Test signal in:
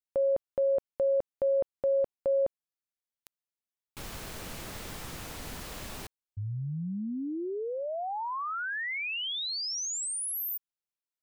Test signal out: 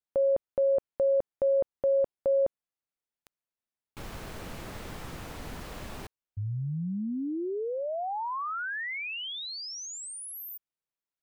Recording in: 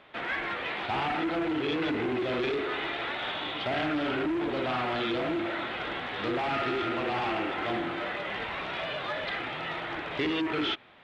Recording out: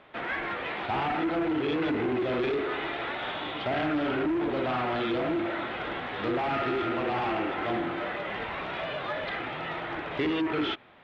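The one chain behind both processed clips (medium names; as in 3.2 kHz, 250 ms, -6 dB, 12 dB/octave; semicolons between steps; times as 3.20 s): treble shelf 3 kHz -9.5 dB; trim +2 dB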